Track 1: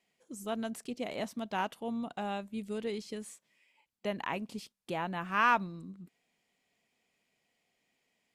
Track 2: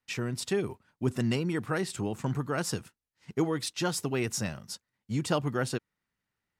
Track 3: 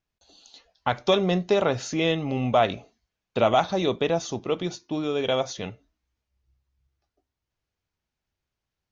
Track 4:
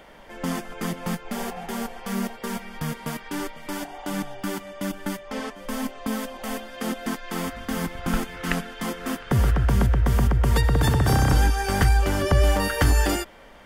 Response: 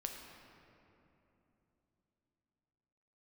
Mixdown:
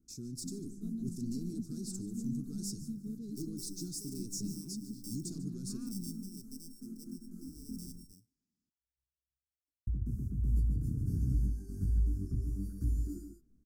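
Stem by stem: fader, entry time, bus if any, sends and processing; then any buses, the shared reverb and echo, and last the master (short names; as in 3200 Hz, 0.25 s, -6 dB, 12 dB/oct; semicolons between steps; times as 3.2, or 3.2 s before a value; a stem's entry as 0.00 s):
-1.5 dB, 0.35 s, no send, no echo send, LPF 4200 Hz 12 dB/oct
-12.0 dB, 0.00 s, send -12.5 dB, echo send -15 dB, overdrive pedal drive 20 dB, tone 5100 Hz, clips at -15.5 dBFS
-18.5 dB, 2.50 s, no send, no echo send, sample sorter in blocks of 16 samples; low shelf 390 Hz -9 dB
-10.0 dB, 0.00 s, muted 7.99–9.87, no send, echo send -7.5 dB, resonant high shelf 2300 Hz -12.5 dB, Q 3; detuned doubles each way 46 cents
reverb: on, RT60 3.2 s, pre-delay 7 ms
echo: echo 0.145 s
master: inverse Chebyshev band-stop 530–3200 Hz, stop band 40 dB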